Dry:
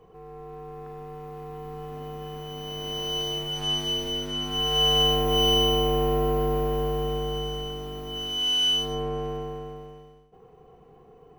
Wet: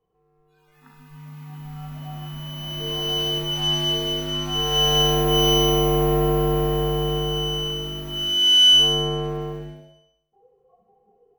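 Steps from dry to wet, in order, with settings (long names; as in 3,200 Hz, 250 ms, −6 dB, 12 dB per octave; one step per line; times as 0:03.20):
noise reduction from a noise print of the clip's start 26 dB
on a send: repeating echo 66 ms, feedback 56%, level −7 dB
on the sum: level +4.5 dB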